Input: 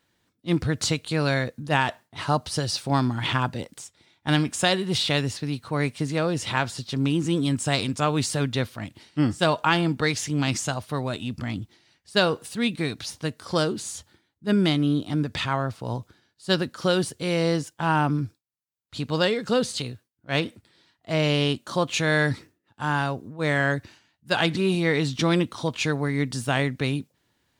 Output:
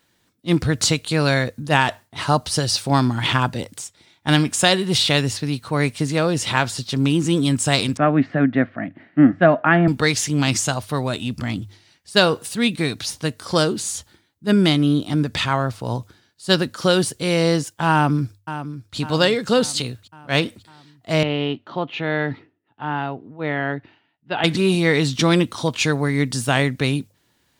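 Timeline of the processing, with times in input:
7.97–9.88 speaker cabinet 170–2000 Hz, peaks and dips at 170 Hz +6 dB, 270 Hz +9 dB, 450 Hz -5 dB, 670 Hz +8 dB, 950 Hz -9 dB, 1800 Hz +7 dB
17.92–18.97 echo throw 0.55 s, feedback 55%, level -11.5 dB
21.23–24.44 speaker cabinet 200–2600 Hz, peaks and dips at 210 Hz -7 dB, 350 Hz -3 dB, 540 Hz -8 dB, 1100 Hz -8 dB, 1600 Hz -8 dB, 2300 Hz -6 dB
whole clip: high shelf 5200 Hz +4.5 dB; notches 50/100 Hz; gain +5 dB

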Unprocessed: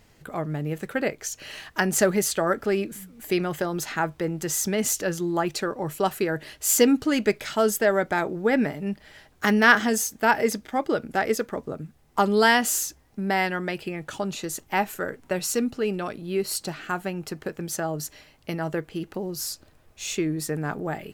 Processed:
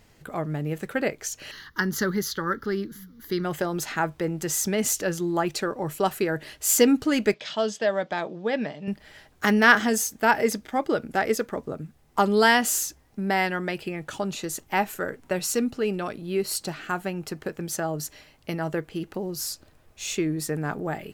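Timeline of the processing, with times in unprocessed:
1.51–3.45 fixed phaser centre 2500 Hz, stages 6
7.34–8.88 speaker cabinet 210–5700 Hz, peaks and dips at 270 Hz -7 dB, 390 Hz -9 dB, 840 Hz -4 dB, 1400 Hz -9 dB, 2100 Hz -6 dB, 3300 Hz +5 dB

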